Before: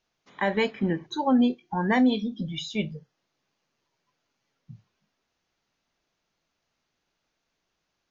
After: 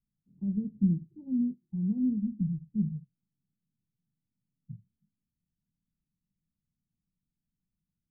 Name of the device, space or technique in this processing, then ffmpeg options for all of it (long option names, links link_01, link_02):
the neighbour's flat through the wall: -filter_complex "[0:a]lowpass=frequency=200:width=0.5412,lowpass=frequency=200:width=1.3066,equalizer=frequency=190:width_type=o:width=0.77:gain=5,asplit=3[link_01][link_02][link_03];[link_01]afade=type=out:start_time=1.05:duration=0.02[link_04];[link_02]lowshelf=frequency=150:gain=-9,afade=type=in:start_time=1.05:duration=0.02,afade=type=out:start_time=2.02:duration=0.02[link_05];[link_03]afade=type=in:start_time=2.02:duration=0.02[link_06];[link_04][link_05][link_06]amix=inputs=3:normalize=0"